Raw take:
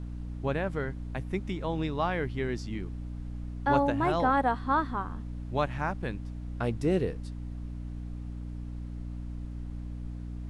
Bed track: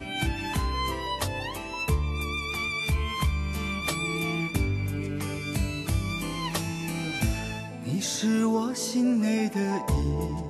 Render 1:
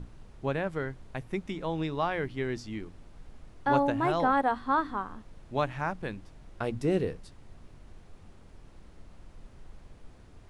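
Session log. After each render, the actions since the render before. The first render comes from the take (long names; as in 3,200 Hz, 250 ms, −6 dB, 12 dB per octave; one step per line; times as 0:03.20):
mains-hum notches 60/120/180/240/300 Hz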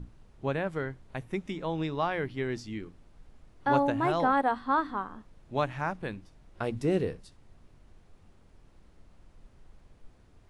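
noise reduction from a noise print 6 dB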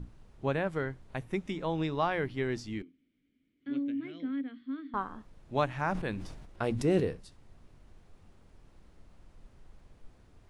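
0:02.82–0:04.94: formant filter i
0:05.82–0:07.00: level that may fall only so fast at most 42 dB per second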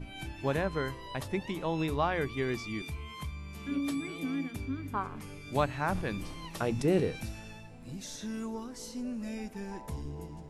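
mix in bed track −13.5 dB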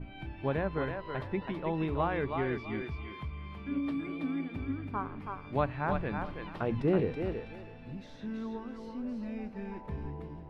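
high-frequency loss of the air 400 metres
feedback echo with a high-pass in the loop 326 ms, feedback 26%, high-pass 420 Hz, level −4 dB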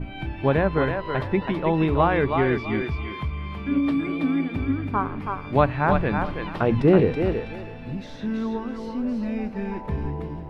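level +11 dB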